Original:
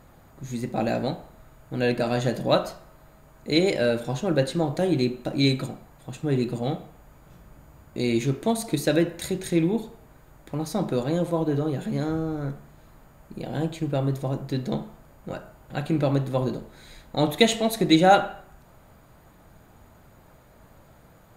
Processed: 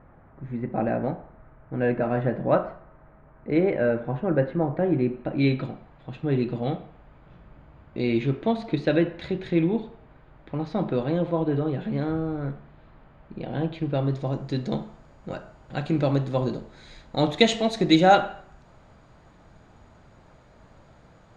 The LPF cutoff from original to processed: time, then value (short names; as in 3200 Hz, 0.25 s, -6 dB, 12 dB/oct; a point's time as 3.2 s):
LPF 24 dB/oct
4.99 s 2000 Hz
5.7 s 3500 Hz
13.64 s 3500 Hz
14.46 s 6400 Hz